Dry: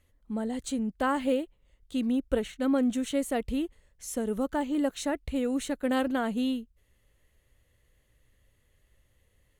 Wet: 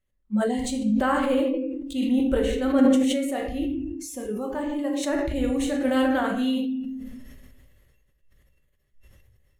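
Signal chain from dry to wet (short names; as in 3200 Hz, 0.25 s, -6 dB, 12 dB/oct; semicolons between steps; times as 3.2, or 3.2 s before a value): low shelf 460 Hz +3.5 dB; 2.85–5.03 flange 1 Hz, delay 6.1 ms, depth 9 ms, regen +68%; bell 1500 Hz +2 dB; shoebox room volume 290 m³, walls mixed, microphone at 1.1 m; spectral noise reduction 17 dB; sustainer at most 28 dB/s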